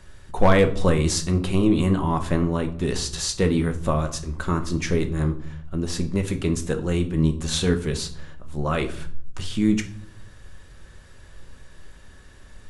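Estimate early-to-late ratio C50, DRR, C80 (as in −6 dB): 13.0 dB, 6.0 dB, 17.5 dB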